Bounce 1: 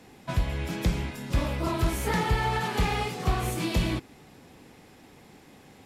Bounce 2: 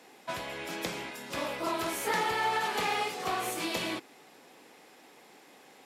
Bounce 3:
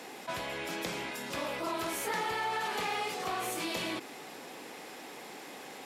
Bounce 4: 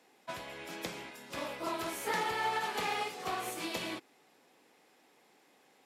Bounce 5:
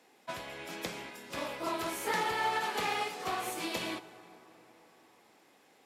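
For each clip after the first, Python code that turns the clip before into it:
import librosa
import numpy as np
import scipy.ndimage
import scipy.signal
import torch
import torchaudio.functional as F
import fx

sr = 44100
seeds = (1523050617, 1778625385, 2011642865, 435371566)

y1 = scipy.signal.sosfilt(scipy.signal.butter(2, 410.0, 'highpass', fs=sr, output='sos'), x)
y2 = fx.env_flatten(y1, sr, amount_pct=50)
y2 = y2 * 10.0 ** (-5.0 / 20.0)
y3 = fx.upward_expand(y2, sr, threshold_db=-46.0, expansion=2.5)
y3 = y3 * 10.0 ** (2.0 / 20.0)
y4 = fx.rev_plate(y3, sr, seeds[0], rt60_s=4.7, hf_ratio=0.45, predelay_ms=0, drr_db=15.0)
y4 = y4 * 10.0 ** (1.5 / 20.0)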